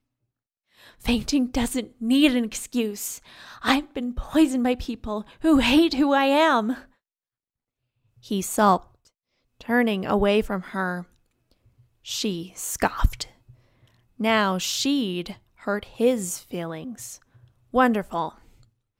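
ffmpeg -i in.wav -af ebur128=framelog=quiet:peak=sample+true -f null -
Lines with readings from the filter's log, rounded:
Integrated loudness:
  I:         -23.6 LUFS
  Threshold: -34.8 LUFS
Loudness range:
  LRA:         5.9 LU
  Threshold: -44.9 LUFS
  LRA low:   -27.5 LUFS
  LRA high:  -21.6 LUFS
Sample peak:
  Peak:       -4.8 dBFS
True peak:
  Peak:       -4.8 dBFS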